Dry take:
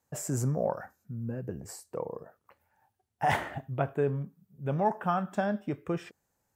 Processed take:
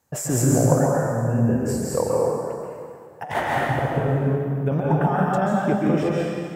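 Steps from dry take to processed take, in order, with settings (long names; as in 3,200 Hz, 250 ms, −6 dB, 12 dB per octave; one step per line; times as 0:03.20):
dynamic equaliser 620 Hz, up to +5 dB, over −39 dBFS, Q 0.99
compressor whose output falls as the input rises −28 dBFS, ratio −0.5
dense smooth reverb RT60 2.2 s, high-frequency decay 0.8×, pre-delay 120 ms, DRR −4.5 dB
level +5.5 dB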